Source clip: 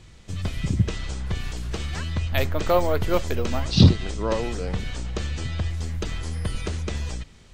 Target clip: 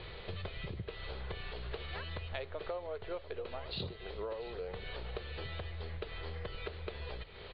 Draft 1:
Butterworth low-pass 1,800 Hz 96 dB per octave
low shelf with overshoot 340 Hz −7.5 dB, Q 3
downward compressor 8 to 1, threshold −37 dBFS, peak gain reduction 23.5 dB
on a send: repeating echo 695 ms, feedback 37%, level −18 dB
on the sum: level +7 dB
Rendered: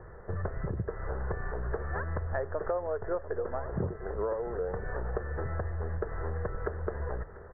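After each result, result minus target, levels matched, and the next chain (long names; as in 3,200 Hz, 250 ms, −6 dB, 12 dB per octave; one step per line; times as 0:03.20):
downward compressor: peak gain reduction −8.5 dB; 2,000 Hz band −3.5 dB
Butterworth low-pass 1,800 Hz 96 dB per octave
low shelf with overshoot 340 Hz −7.5 dB, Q 3
downward compressor 8 to 1, threshold −46.5 dBFS, peak gain reduction 32 dB
on a send: repeating echo 695 ms, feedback 37%, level −18 dB
on the sum: level +7 dB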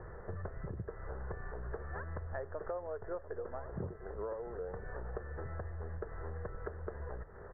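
2,000 Hz band −3.5 dB
Butterworth low-pass 4,400 Hz 96 dB per octave
low shelf with overshoot 340 Hz −7.5 dB, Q 3
downward compressor 8 to 1, threshold −46.5 dBFS, peak gain reduction 32 dB
on a send: repeating echo 695 ms, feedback 37%, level −18 dB
on the sum: level +7 dB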